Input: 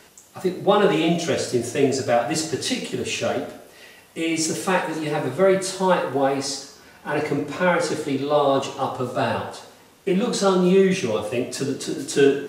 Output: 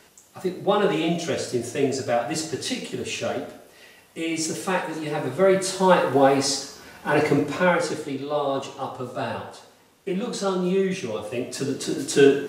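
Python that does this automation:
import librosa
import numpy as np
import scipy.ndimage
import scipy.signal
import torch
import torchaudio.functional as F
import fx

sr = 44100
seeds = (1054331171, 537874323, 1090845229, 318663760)

y = fx.gain(x, sr, db=fx.line((5.07, -3.5), (6.16, 3.5), (7.38, 3.5), (8.14, -6.0), (11.16, -6.0), (11.95, 1.0)))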